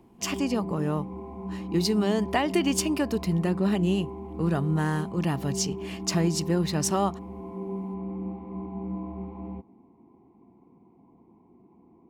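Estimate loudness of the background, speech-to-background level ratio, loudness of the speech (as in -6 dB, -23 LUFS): -36.0 LUFS, 9.0 dB, -27.0 LUFS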